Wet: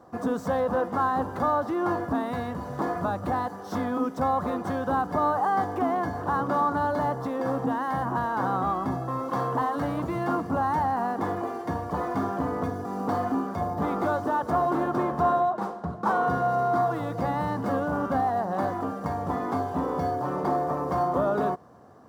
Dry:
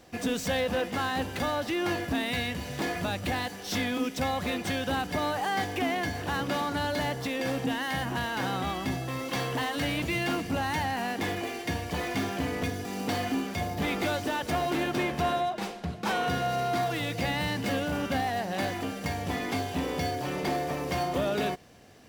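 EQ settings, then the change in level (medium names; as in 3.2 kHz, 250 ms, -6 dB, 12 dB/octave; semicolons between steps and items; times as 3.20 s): high-pass 87 Hz; resonant high shelf 1.7 kHz -13.5 dB, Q 3; +2.0 dB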